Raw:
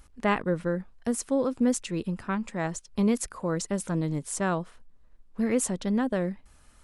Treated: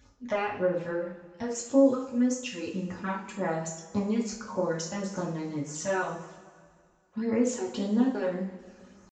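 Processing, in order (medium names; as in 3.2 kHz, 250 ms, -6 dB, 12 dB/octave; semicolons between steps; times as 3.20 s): high-pass 49 Hz 24 dB/octave; peaking EQ 70 Hz -10.5 dB 1.9 oct; compression, threshold -27 dBFS, peak gain reduction 8 dB; phase shifter stages 12, 2.4 Hz, lowest notch 180–3900 Hz; tempo 0.75×; two-slope reverb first 0.43 s, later 2.1 s, from -17 dB, DRR -3.5 dB; resampled via 16 kHz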